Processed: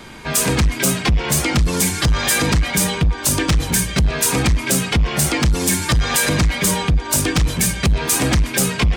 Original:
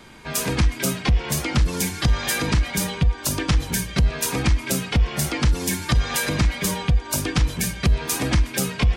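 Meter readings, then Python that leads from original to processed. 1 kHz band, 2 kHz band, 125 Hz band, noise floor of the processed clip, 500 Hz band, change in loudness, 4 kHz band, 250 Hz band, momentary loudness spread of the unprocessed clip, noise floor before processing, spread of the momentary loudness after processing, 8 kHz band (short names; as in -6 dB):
+6.0 dB, +6.0 dB, +3.0 dB, -29 dBFS, +6.0 dB, +5.0 dB, +6.0 dB, +5.0 dB, 3 LU, -36 dBFS, 2 LU, +8.5 dB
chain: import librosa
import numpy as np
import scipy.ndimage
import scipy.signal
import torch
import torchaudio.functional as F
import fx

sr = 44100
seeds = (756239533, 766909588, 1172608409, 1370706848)

y = fx.dynamic_eq(x, sr, hz=8300.0, q=1.8, threshold_db=-42.0, ratio=4.0, max_db=6)
y = 10.0 ** (-19.0 / 20.0) * np.tanh(y / 10.0 ** (-19.0 / 20.0))
y = y * librosa.db_to_amplitude(8.0)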